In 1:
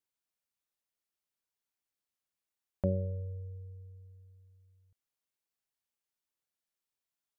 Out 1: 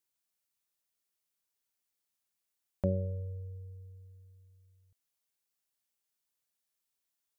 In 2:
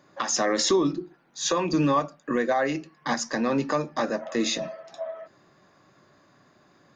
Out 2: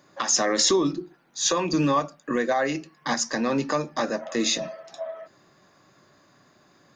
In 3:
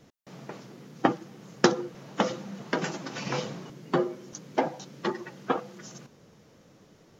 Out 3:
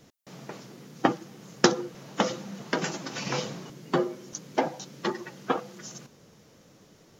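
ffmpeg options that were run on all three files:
ffmpeg -i in.wav -af "highshelf=frequency=4200:gain=7" out.wav

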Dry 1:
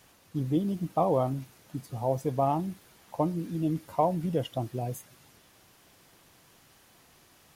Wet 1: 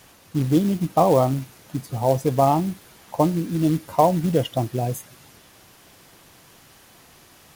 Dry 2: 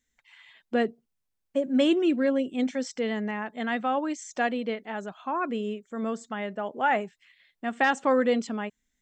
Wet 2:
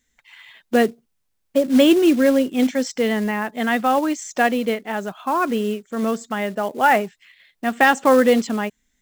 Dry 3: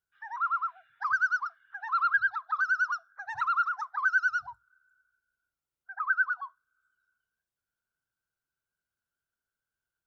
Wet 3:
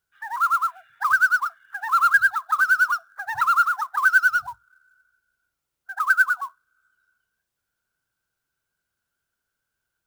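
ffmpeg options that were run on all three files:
ffmpeg -i in.wav -af "acrusher=bits=5:mode=log:mix=0:aa=0.000001,volume=8.5dB" out.wav

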